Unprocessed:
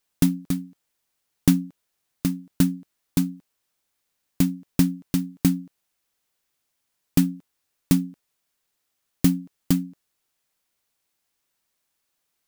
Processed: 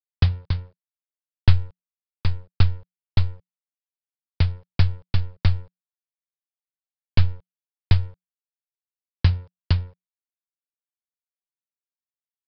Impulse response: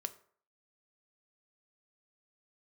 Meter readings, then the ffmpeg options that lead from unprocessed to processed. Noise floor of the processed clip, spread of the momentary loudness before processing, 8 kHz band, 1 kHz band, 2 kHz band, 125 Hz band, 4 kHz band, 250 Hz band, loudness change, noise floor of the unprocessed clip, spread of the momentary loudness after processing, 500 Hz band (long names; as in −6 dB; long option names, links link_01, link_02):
below −85 dBFS, 9 LU, below −30 dB, +4.0 dB, +4.0 dB, +6.0 dB, +3.0 dB, −15.5 dB, −0.5 dB, −77 dBFS, 9 LU, −2.5 dB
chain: -af "bandreject=frequency=60:width_type=h:width=6,bandreject=frequency=120:width_type=h:width=6,aresample=11025,aeval=exprs='sgn(val(0))*max(abs(val(0))-0.00376,0)':channel_layout=same,aresample=44100,afreqshift=-180,volume=4dB"